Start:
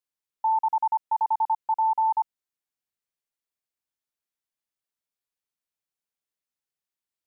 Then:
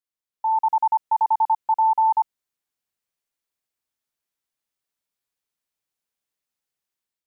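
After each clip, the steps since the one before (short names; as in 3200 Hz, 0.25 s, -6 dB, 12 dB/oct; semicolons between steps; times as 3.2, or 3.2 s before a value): AGC gain up to 8.5 dB; gain -4 dB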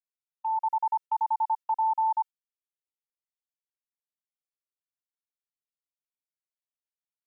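gate -30 dBFS, range -21 dB; Bessel high-pass 840 Hz, order 2; comb 2.2 ms; gain -8.5 dB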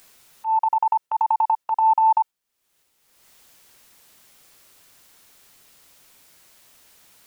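upward compressor, threshold -34 dBFS; dynamic EQ 700 Hz, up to +3 dB, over -35 dBFS, Q 0.71; transient shaper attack -10 dB, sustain +6 dB; gain +7.5 dB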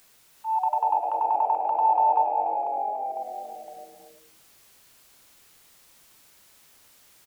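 echoes that change speed 0.366 s, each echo -1 st, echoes 3, each echo -6 dB; frequency-shifting echo 0.105 s, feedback 37%, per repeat -140 Hz, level -7 dB; non-linear reverb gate 0.37 s rising, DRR 7.5 dB; gain -5 dB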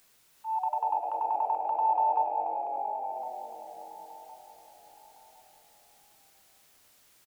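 feedback echo 1.061 s, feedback 34%, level -15 dB; gain -5.5 dB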